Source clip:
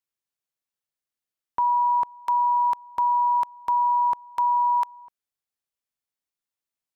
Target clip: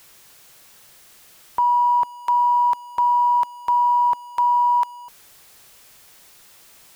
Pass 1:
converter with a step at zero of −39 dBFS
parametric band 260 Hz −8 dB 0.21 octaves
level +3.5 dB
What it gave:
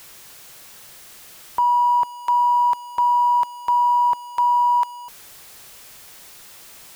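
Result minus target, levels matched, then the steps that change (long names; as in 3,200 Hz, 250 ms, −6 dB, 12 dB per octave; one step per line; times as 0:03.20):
converter with a step at zero: distortion +6 dB
change: converter with a step at zero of −45 dBFS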